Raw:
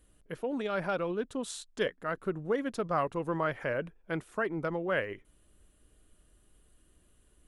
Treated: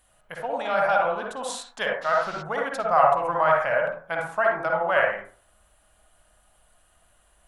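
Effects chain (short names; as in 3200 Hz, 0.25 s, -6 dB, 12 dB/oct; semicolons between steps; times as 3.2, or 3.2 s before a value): resonant low shelf 530 Hz -10.5 dB, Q 3; reverb RT60 0.45 s, pre-delay 47 ms, DRR -1 dB; 2.01–2.41 band noise 410–5200 Hz -51 dBFS; gain +6 dB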